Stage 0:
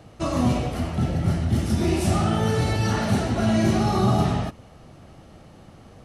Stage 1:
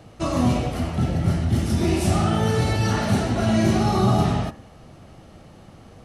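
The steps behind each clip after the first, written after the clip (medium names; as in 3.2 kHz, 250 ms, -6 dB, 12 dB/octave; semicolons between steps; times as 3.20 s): de-hum 71.75 Hz, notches 27; trim +1.5 dB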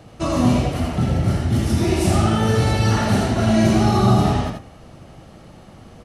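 delay 81 ms -5 dB; trim +2 dB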